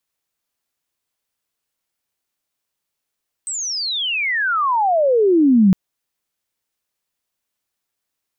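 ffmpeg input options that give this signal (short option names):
-f lavfi -i "aevalsrc='pow(10,(-22.5+14.5*t/2.26)/20)*sin(2*PI*8300*2.26/log(180/8300)*(exp(log(180/8300)*t/2.26)-1))':d=2.26:s=44100"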